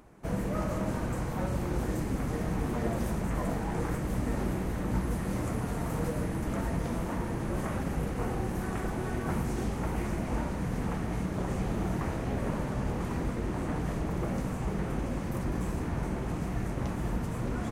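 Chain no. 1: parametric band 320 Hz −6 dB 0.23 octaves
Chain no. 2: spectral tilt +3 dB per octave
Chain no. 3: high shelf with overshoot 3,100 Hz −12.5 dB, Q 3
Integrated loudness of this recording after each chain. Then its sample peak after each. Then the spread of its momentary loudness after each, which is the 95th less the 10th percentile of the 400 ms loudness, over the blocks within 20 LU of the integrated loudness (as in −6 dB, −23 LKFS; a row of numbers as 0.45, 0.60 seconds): −33.5, −36.5, −32.5 LKFS; −18.0, −21.5, −17.5 dBFS; 2, 3, 2 LU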